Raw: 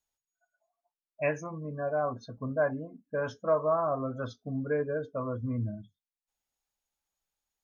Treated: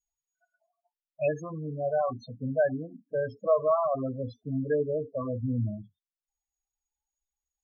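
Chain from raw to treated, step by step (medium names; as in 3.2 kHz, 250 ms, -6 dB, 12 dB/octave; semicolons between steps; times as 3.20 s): block-companded coder 5-bit; loudest bins only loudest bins 8; trim +3 dB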